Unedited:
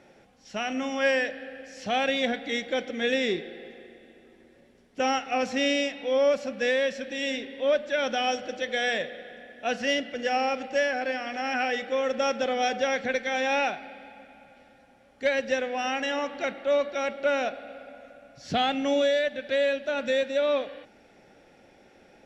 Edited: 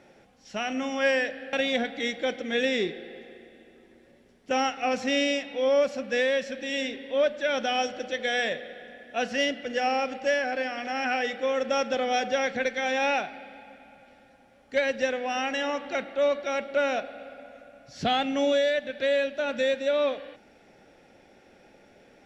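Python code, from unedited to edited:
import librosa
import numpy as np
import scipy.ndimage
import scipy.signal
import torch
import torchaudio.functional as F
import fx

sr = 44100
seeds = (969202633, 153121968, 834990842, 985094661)

y = fx.edit(x, sr, fx.cut(start_s=1.53, length_s=0.49), tone=tone)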